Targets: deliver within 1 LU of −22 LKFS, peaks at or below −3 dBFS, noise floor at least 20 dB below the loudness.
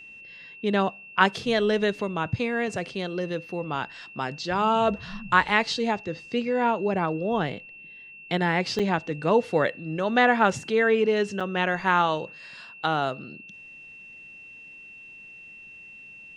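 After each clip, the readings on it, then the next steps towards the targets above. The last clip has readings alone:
number of dropouts 2; longest dropout 5.5 ms; interfering tone 2,700 Hz; level of the tone −43 dBFS; integrated loudness −25.0 LKFS; sample peak −3.5 dBFS; target loudness −22.0 LKFS
→ repair the gap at 0:08.79/0:11.40, 5.5 ms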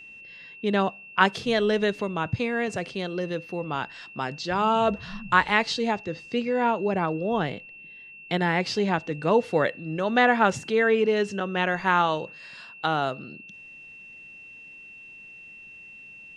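number of dropouts 0; interfering tone 2,700 Hz; level of the tone −43 dBFS
→ notch filter 2,700 Hz, Q 30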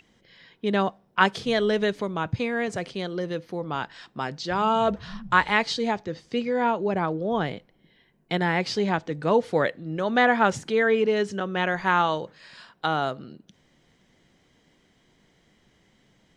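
interfering tone none found; integrated loudness −25.0 LKFS; sample peak −4.0 dBFS; target loudness −22.0 LKFS
→ level +3 dB
brickwall limiter −3 dBFS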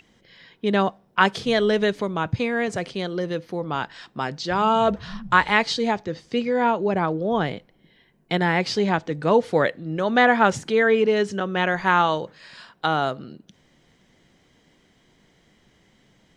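integrated loudness −22.5 LKFS; sample peak −3.0 dBFS; background noise floor −61 dBFS

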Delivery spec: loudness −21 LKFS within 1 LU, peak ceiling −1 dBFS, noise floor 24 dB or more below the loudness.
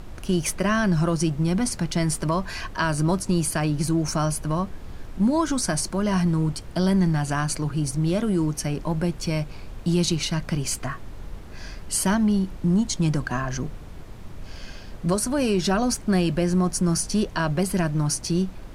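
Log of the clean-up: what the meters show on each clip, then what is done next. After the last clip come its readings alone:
background noise floor −39 dBFS; target noise floor −48 dBFS; integrated loudness −24.0 LKFS; sample peak −10.0 dBFS; target loudness −21.0 LKFS
→ noise reduction from a noise print 9 dB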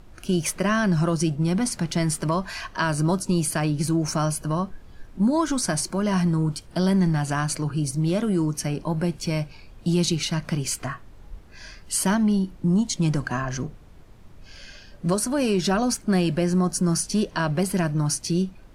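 background noise floor −47 dBFS; target noise floor −48 dBFS
→ noise reduction from a noise print 6 dB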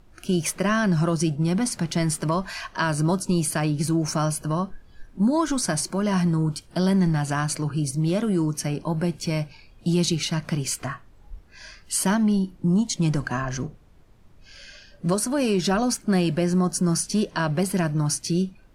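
background noise floor −52 dBFS; integrated loudness −24.0 LKFS; sample peak −10.0 dBFS; target loudness −21.0 LKFS
→ level +3 dB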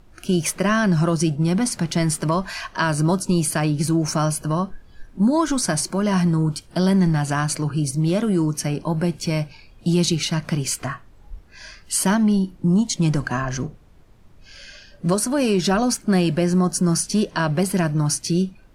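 integrated loudness −21.0 LKFS; sample peak −7.0 dBFS; background noise floor −49 dBFS

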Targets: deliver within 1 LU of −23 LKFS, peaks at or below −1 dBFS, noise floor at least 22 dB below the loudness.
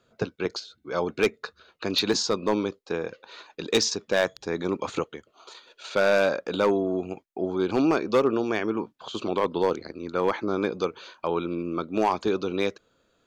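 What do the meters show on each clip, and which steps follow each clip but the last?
share of clipped samples 0.5%; peaks flattened at −14.0 dBFS; number of dropouts 1; longest dropout 2.3 ms; integrated loudness −26.5 LKFS; sample peak −14.0 dBFS; target loudness −23.0 LKFS
→ clipped peaks rebuilt −14 dBFS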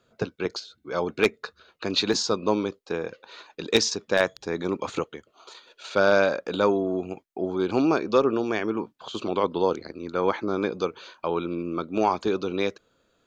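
share of clipped samples 0.0%; number of dropouts 1; longest dropout 2.3 ms
→ repair the gap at 0:02.13, 2.3 ms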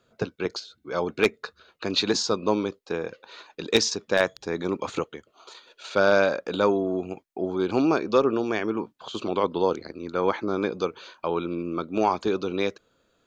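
number of dropouts 0; integrated loudness −26.0 LKFS; sample peak −5.0 dBFS; target loudness −23.0 LKFS
→ level +3 dB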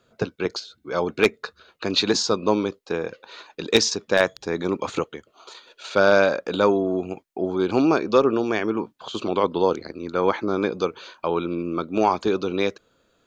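integrated loudness −23.0 LKFS; sample peak −2.0 dBFS; background noise floor −66 dBFS

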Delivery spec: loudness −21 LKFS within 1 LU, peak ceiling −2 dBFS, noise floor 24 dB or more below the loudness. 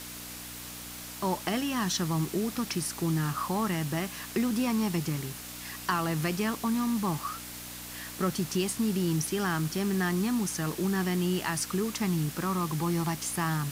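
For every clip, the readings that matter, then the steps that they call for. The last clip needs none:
mains hum 60 Hz; hum harmonics up to 300 Hz; level of the hum −49 dBFS; background noise floor −42 dBFS; target noise floor −55 dBFS; integrated loudness −30.5 LKFS; sample peak −14.5 dBFS; target loudness −21.0 LKFS
→ hum removal 60 Hz, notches 5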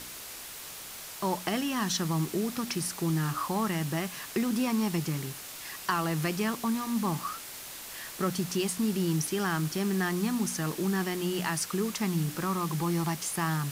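mains hum none found; background noise floor −43 dBFS; target noise floor −55 dBFS
→ broadband denoise 12 dB, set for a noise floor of −43 dBFS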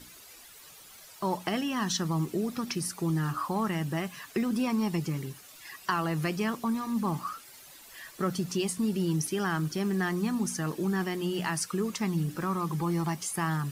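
background noise floor −51 dBFS; target noise floor −55 dBFS
→ broadband denoise 6 dB, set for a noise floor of −51 dBFS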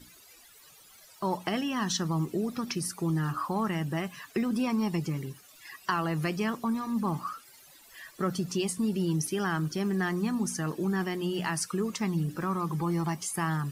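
background noise floor −55 dBFS; integrated loudness −30.5 LKFS; sample peak −15.0 dBFS; target loudness −21.0 LKFS
→ level +9.5 dB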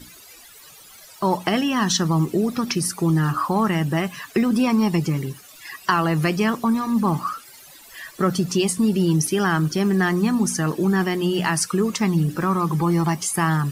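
integrated loudness −21.0 LKFS; sample peak −5.5 dBFS; background noise floor −46 dBFS

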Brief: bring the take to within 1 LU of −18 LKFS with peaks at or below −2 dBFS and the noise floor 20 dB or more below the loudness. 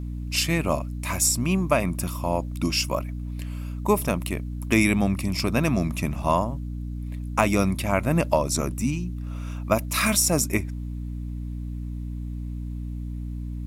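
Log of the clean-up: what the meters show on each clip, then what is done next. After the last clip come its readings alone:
mains hum 60 Hz; hum harmonics up to 300 Hz; level of the hum −29 dBFS; integrated loudness −25.5 LKFS; sample peak −4.0 dBFS; target loudness −18.0 LKFS
→ mains-hum notches 60/120/180/240/300 Hz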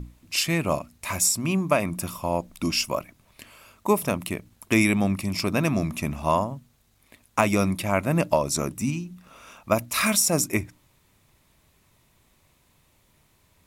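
mains hum none found; integrated loudness −24.5 LKFS; sample peak −4.0 dBFS; target loudness −18.0 LKFS
→ level +6.5 dB
brickwall limiter −2 dBFS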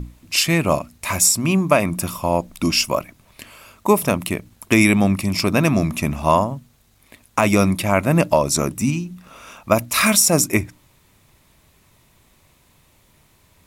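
integrated loudness −18.5 LKFS; sample peak −2.0 dBFS; background noise floor −57 dBFS

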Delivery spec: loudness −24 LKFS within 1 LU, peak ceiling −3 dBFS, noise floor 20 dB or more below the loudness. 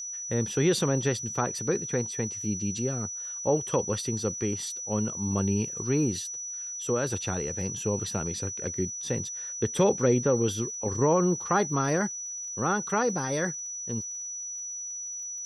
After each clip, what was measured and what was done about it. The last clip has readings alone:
crackle rate 41 per second; interfering tone 5,900 Hz; level of the tone −34 dBFS; integrated loudness −28.5 LKFS; sample peak −11.5 dBFS; target loudness −24.0 LKFS
→ click removal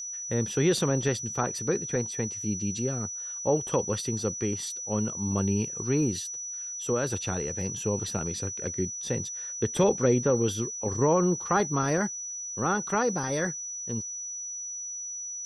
crackle rate 0 per second; interfering tone 5,900 Hz; level of the tone −34 dBFS
→ notch filter 5,900 Hz, Q 30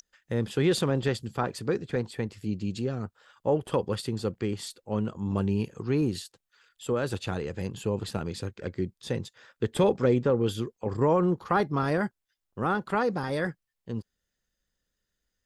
interfering tone none found; integrated loudness −29.5 LKFS; sample peak −12.0 dBFS; target loudness −24.0 LKFS
→ level +5.5 dB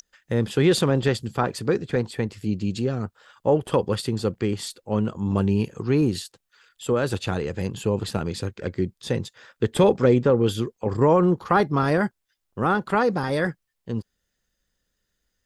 integrated loudness −24.0 LKFS; sample peak −6.5 dBFS; background noise floor −78 dBFS

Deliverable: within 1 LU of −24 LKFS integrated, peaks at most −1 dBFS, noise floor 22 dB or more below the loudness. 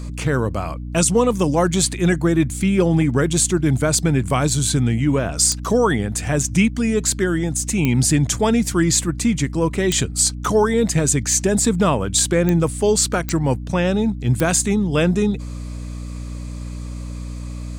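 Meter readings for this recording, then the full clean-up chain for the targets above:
number of clicks 6; mains hum 60 Hz; hum harmonics up to 300 Hz; level of the hum −27 dBFS; integrated loudness −18.5 LKFS; sample peak −4.0 dBFS; target loudness −24.0 LKFS
→ click removal
hum removal 60 Hz, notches 5
level −5.5 dB

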